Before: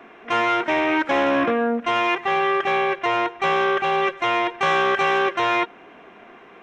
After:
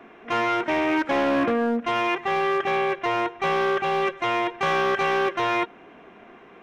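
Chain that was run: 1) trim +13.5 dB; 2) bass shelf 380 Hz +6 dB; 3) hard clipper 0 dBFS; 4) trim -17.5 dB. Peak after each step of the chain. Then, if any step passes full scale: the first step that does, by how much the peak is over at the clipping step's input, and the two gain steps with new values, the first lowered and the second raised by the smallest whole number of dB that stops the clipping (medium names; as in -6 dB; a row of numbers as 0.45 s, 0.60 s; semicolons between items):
+3.0 dBFS, +4.0 dBFS, 0.0 dBFS, -17.5 dBFS; step 1, 4.0 dB; step 1 +9.5 dB, step 4 -13.5 dB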